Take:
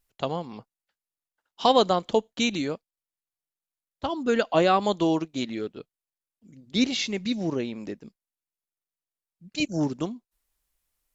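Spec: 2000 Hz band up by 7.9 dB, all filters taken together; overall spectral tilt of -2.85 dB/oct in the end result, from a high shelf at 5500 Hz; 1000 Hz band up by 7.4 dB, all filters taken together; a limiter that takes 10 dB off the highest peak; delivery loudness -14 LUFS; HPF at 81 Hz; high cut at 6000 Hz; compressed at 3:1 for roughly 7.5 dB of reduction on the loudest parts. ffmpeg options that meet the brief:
-af "highpass=81,lowpass=6k,equalizer=f=1k:t=o:g=8,equalizer=f=2k:t=o:g=7.5,highshelf=f=5.5k:g=5.5,acompressor=threshold=-19dB:ratio=3,volume=15.5dB,alimiter=limit=-1dB:level=0:latency=1"

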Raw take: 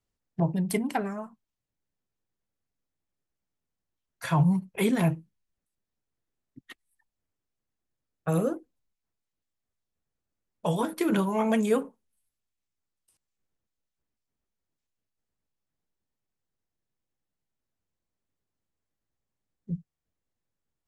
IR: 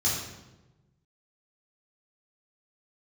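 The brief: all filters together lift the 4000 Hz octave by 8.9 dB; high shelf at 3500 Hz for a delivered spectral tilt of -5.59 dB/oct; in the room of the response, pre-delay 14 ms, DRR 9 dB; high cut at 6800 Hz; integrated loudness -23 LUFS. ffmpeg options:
-filter_complex "[0:a]lowpass=6.8k,highshelf=f=3.5k:g=7.5,equalizer=f=4k:t=o:g=7,asplit=2[a][b];[1:a]atrim=start_sample=2205,adelay=14[c];[b][c]afir=irnorm=-1:irlink=0,volume=-18.5dB[d];[a][d]amix=inputs=2:normalize=0,volume=3.5dB"

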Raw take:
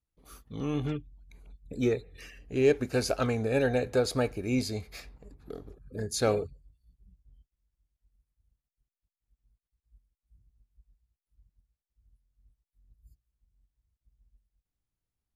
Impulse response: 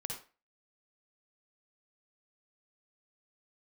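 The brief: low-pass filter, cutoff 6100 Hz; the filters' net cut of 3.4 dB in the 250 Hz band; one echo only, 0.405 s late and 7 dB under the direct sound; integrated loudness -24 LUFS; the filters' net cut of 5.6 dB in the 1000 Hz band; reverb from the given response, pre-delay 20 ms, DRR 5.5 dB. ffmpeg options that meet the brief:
-filter_complex "[0:a]lowpass=6.1k,equalizer=f=250:t=o:g=-3.5,equalizer=f=1k:t=o:g=-8.5,aecho=1:1:405:0.447,asplit=2[a][b];[1:a]atrim=start_sample=2205,adelay=20[c];[b][c]afir=irnorm=-1:irlink=0,volume=-5dB[d];[a][d]amix=inputs=2:normalize=0,volume=7dB"

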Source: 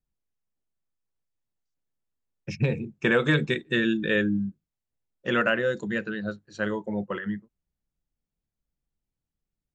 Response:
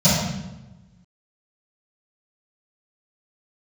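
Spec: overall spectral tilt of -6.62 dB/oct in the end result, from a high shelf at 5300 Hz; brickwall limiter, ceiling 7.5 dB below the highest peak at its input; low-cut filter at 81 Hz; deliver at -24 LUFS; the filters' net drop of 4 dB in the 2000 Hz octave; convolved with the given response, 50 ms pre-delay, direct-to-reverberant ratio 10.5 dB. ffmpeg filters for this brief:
-filter_complex "[0:a]highpass=81,equalizer=f=2k:t=o:g=-4.5,highshelf=f=5.3k:g=-5.5,alimiter=limit=-18.5dB:level=0:latency=1,asplit=2[a][b];[1:a]atrim=start_sample=2205,adelay=50[c];[b][c]afir=irnorm=-1:irlink=0,volume=-31dB[d];[a][d]amix=inputs=2:normalize=0,volume=3dB"

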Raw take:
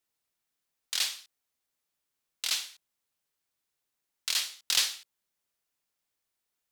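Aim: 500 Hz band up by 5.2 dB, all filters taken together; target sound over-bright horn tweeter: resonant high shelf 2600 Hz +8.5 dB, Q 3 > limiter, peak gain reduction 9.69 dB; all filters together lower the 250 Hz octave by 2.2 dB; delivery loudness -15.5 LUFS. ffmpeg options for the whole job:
-af "equalizer=f=250:t=o:g=-7,equalizer=f=500:t=o:g=8.5,highshelf=f=2.6k:t=q:w=3:g=8.5,volume=6dB,alimiter=limit=-1.5dB:level=0:latency=1"

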